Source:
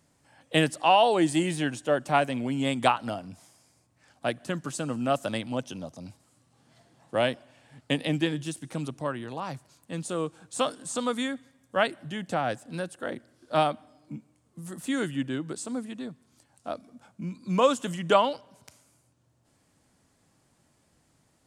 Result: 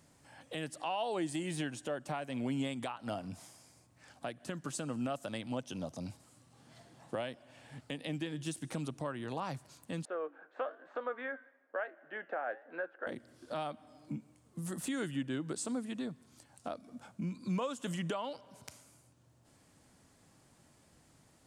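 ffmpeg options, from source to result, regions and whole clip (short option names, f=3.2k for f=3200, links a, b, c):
-filter_complex "[0:a]asettb=1/sr,asplit=3[a][b][c];[a]atrim=end=10.054[d];[b]atrim=start=10.05:end=13.07,asetpts=PTS-STARTPTS,afade=t=in:d=0.004:c=qsin,afade=t=out:st=3.016:d=0.004:c=qsin,highpass=f=380:w=0.5412,highpass=f=380:w=1.3066,equalizer=f=590:t=q:w=4:g=4,equalizer=f=1k:t=q:w=4:g=-3,equalizer=f=1.6k:t=q:w=4:g=8,lowpass=f=2k:w=0.5412,lowpass=f=2k:w=1.3066,flanger=delay=6.5:depth=3.7:regen=-82:speed=1.1:shape=triangular[e];[c]atrim=start=13.066[f];[d][e]acrossfade=d=0.004:c1=hsin:c2=qsin[g];[g][f]acrossfade=d=0.004:c1=qsin:c2=hsin,acompressor=threshold=-40dB:ratio=2,alimiter=level_in=4.5dB:limit=-24dB:level=0:latency=1:release=252,volume=-4.5dB,volume=2dB"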